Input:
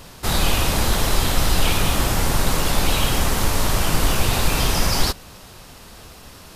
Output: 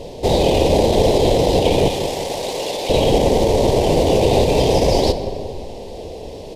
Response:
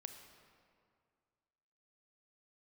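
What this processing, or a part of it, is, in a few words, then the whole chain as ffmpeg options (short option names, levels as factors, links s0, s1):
saturated reverb return: -filter_complex "[0:a]asplit=2[s0][s1];[1:a]atrim=start_sample=2205[s2];[s1][s2]afir=irnorm=-1:irlink=0,asoftclip=type=tanh:threshold=0.0596,volume=1.88[s3];[s0][s3]amix=inputs=2:normalize=0,asettb=1/sr,asplit=3[s4][s5][s6];[s4]atrim=end=1.884[s7];[s5]atrim=start=1.88:end=2.9,asetpts=PTS-STARTPTS,afade=t=in:d=0.004:c=qsin,afade=t=out:st=1.016:d=0.004:c=qsin,highpass=f=1400:p=1[s8];[s6]atrim=start=2.896[s9];[s7][s8]acrossfade=d=0.004:c1=hsin:c2=qsin[s10];[s10][s9]acrossfade=d=0.004:c1=qsin:c2=hsin,afftfilt=real='re*lt(hypot(re,im),2)':imag='im*lt(hypot(re,im),2)':win_size=1024:overlap=0.75,firequalizer=gain_entry='entry(190,0);entry(470,14);entry(930,-1);entry(1300,-26);entry(2000,-8);entry(3400,-3);entry(13000,-18)':delay=0.05:min_phase=1,asplit=2[s11][s12];[s12]adelay=180,lowpass=f=910:p=1,volume=0.335,asplit=2[s13][s14];[s14]adelay=180,lowpass=f=910:p=1,volume=0.53,asplit=2[s15][s16];[s16]adelay=180,lowpass=f=910:p=1,volume=0.53,asplit=2[s17][s18];[s18]adelay=180,lowpass=f=910:p=1,volume=0.53,asplit=2[s19][s20];[s20]adelay=180,lowpass=f=910:p=1,volume=0.53,asplit=2[s21][s22];[s22]adelay=180,lowpass=f=910:p=1,volume=0.53[s23];[s11][s13][s15][s17][s19][s21][s23]amix=inputs=7:normalize=0"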